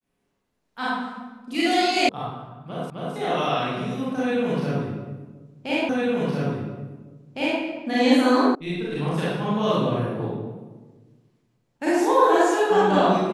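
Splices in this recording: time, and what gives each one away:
2.09 s: sound stops dead
2.90 s: repeat of the last 0.26 s
5.89 s: repeat of the last 1.71 s
8.55 s: sound stops dead

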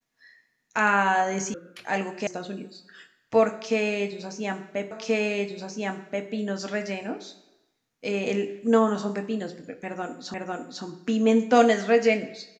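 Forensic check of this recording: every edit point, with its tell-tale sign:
1.54 s: sound stops dead
2.27 s: sound stops dead
4.91 s: repeat of the last 1.38 s
10.34 s: repeat of the last 0.5 s

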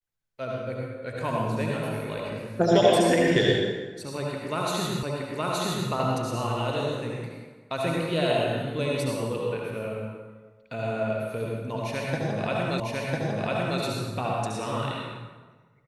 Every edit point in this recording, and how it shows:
5.03 s: repeat of the last 0.87 s
12.80 s: repeat of the last 1 s

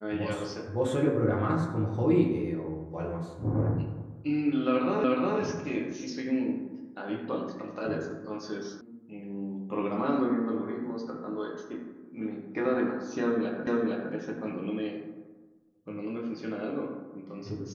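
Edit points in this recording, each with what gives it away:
5.04 s: repeat of the last 0.36 s
8.81 s: sound stops dead
13.67 s: repeat of the last 0.46 s

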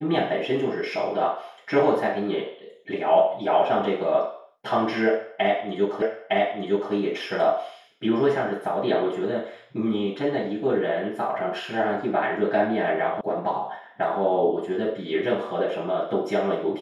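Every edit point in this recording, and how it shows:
6.02 s: repeat of the last 0.91 s
13.21 s: sound stops dead

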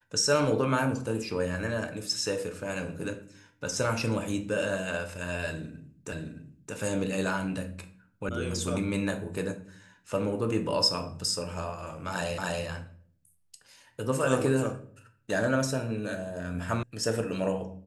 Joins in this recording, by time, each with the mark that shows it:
6.12 s: repeat of the last 0.62 s
8.29 s: sound stops dead
12.38 s: repeat of the last 0.28 s
16.83 s: sound stops dead

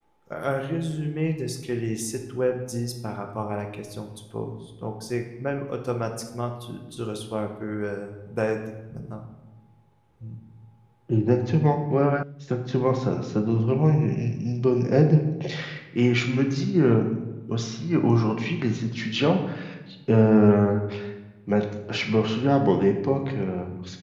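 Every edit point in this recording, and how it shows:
12.23 s: sound stops dead

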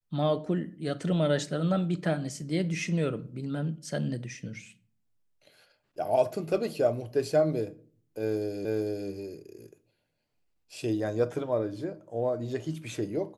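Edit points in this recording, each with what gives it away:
8.65 s: repeat of the last 0.45 s

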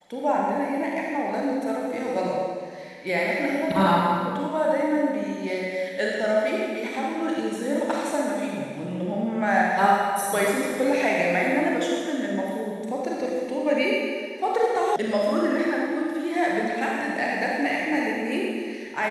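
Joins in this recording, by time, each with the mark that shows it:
14.96 s: sound stops dead

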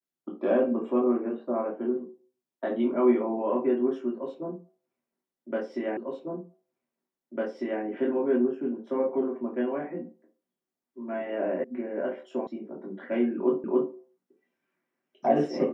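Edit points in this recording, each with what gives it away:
5.97 s: repeat of the last 1.85 s
11.64 s: sound stops dead
12.47 s: sound stops dead
13.64 s: repeat of the last 0.28 s

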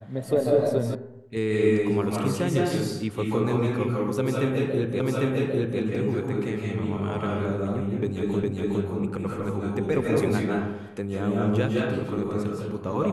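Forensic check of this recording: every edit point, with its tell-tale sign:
0.95 s: sound stops dead
5.00 s: repeat of the last 0.8 s
8.43 s: repeat of the last 0.41 s

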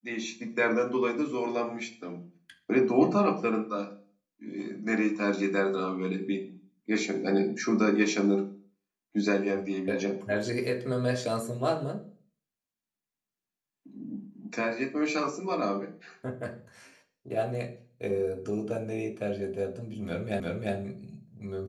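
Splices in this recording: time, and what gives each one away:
20.40 s: repeat of the last 0.35 s

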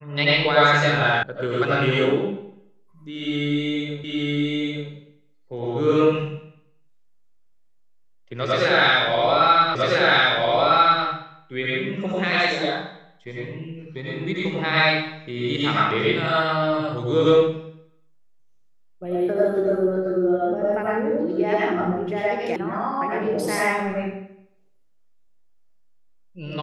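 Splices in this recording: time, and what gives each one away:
1.23 s: sound stops dead
4.04 s: repeat of the last 0.87 s
9.75 s: repeat of the last 1.3 s
22.56 s: sound stops dead

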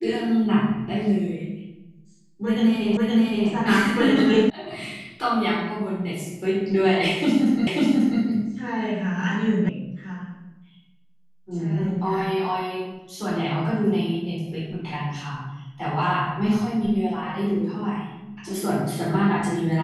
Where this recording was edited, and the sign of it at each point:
2.97 s: repeat of the last 0.52 s
4.50 s: sound stops dead
7.67 s: repeat of the last 0.54 s
9.69 s: sound stops dead

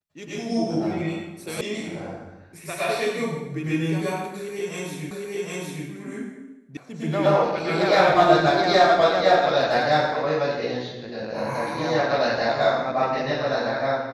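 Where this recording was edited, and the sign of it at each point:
1.61 s: sound stops dead
5.11 s: repeat of the last 0.76 s
6.77 s: sound stops dead

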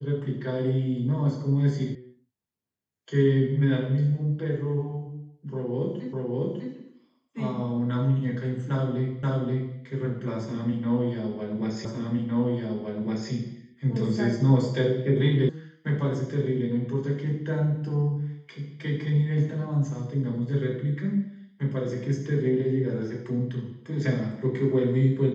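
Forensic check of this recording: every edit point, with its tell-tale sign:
1.95 s: sound stops dead
6.13 s: repeat of the last 0.6 s
9.23 s: repeat of the last 0.53 s
11.85 s: repeat of the last 1.46 s
15.49 s: sound stops dead

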